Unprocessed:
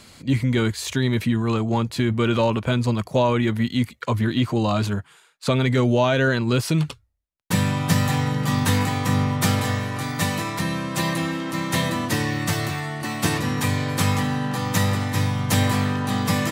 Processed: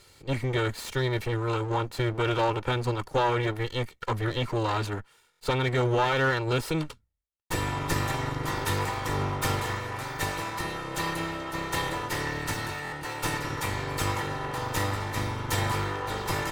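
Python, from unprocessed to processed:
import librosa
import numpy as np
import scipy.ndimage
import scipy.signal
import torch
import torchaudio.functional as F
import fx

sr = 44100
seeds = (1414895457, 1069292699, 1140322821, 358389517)

y = fx.lower_of_two(x, sr, delay_ms=2.2)
y = fx.dynamic_eq(y, sr, hz=1100.0, q=0.74, threshold_db=-38.0, ratio=4.0, max_db=5)
y = fx.buffer_glitch(y, sr, at_s=(5.31, 12.83), block=1024, repeats=3)
y = F.gain(torch.from_numpy(y), -7.0).numpy()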